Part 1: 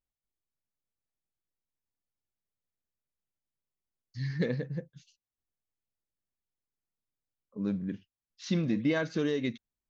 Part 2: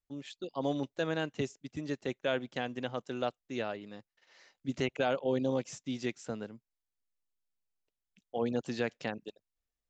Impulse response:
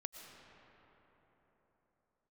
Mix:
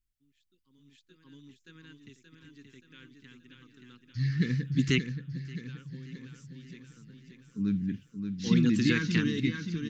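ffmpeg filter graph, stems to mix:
-filter_complex "[0:a]lowshelf=f=88:g=11,volume=1.26,asplit=3[s0][s1][s2];[s1]volume=0.473[s3];[1:a]acontrast=85,adelay=100,volume=1.26,asplit=2[s4][s5];[s5]volume=0.0631[s6];[s2]apad=whole_len=440932[s7];[s4][s7]sidechaingate=range=0.0158:threshold=0.00316:ratio=16:detection=peak[s8];[s3][s6]amix=inputs=2:normalize=0,aecho=0:1:577|1154|1731|2308|2885|3462|4039|4616:1|0.55|0.303|0.166|0.0915|0.0503|0.0277|0.0152[s9];[s0][s8][s9]amix=inputs=3:normalize=0,asuperstop=centerf=660:order=4:qfactor=0.57"

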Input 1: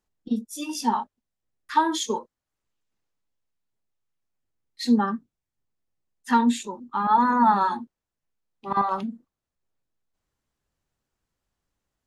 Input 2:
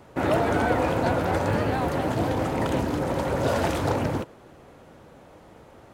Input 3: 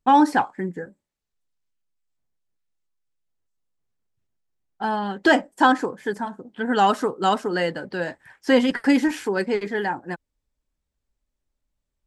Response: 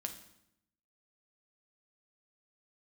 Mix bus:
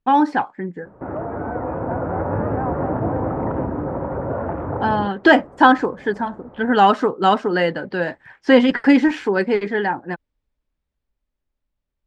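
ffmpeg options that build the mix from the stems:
-filter_complex "[1:a]lowpass=f=1400:w=0.5412,lowpass=f=1400:w=1.3066,acompressor=threshold=0.0112:ratio=1.5,adelay=850,volume=1.06[s0];[2:a]volume=1[s1];[s0][s1]amix=inputs=2:normalize=0,dynaudnorm=f=220:g=17:m=3.76,lowpass=3600"

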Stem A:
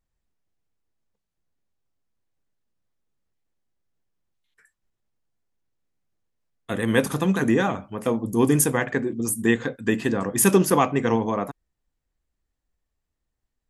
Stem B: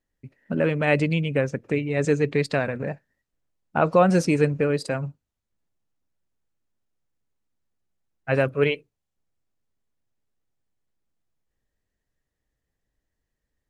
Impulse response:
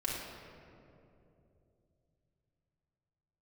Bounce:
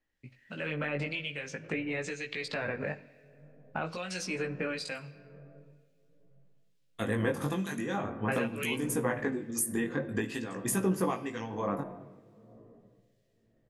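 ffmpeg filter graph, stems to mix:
-filter_complex "[0:a]acompressor=threshold=0.0562:ratio=10,adelay=300,volume=1.33,asplit=2[s0][s1];[s1]volume=0.211[s2];[1:a]alimiter=limit=0.178:level=0:latency=1:release=92,acrossover=split=510|1600[s3][s4][s5];[s3]acompressor=threshold=0.0224:ratio=4[s6];[s4]acompressor=threshold=0.0158:ratio=4[s7];[s5]acompressor=threshold=0.00794:ratio=4[s8];[s6][s7][s8]amix=inputs=3:normalize=0,equalizer=f=3200:t=o:w=2.5:g=12,volume=0.944,asplit=2[s9][s10];[s10]volume=0.15[s11];[2:a]atrim=start_sample=2205[s12];[s2][s11]amix=inputs=2:normalize=0[s13];[s13][s12]afir=irnorm=-1:irlink=0[s14];[s0][s9][s14]amix=inputs=3:normalize=0,acrossover=split=2100[s15][s16];[s15]aeval=exprs='val(0)*(1-0.7/2+0.7/2*cos(2*PI*1.1*n/s))':c=same[s17];[s16]aeval=exprs='val(0)*(1-0.7/2-0.7/2*cos(2*PI*1.1*n/s))':c=same[s18];[s17][s18]amix=inputs=2:normalize=0,flanger=delay=16:depth=5.2:speed=0.46"

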